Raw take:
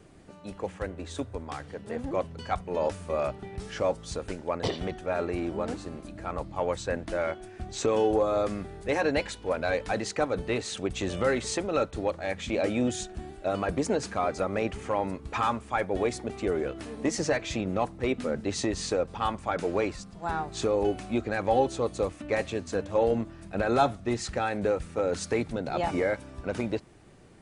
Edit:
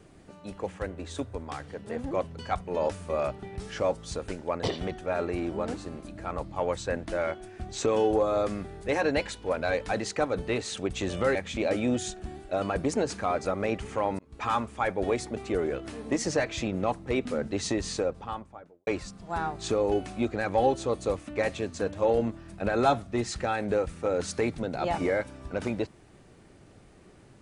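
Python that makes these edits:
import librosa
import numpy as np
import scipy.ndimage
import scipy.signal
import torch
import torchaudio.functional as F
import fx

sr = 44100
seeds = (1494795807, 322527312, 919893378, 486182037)

y = fx.studio_fade_out(x, sr, start_s=18.73, length_s=1.07)
y = fx.edit(y, sr, fx.cut(start_s=11.35, length_s=0.93),
    fx.fade_in_span(start_s=15.12, length_s=0.35), tone=tone)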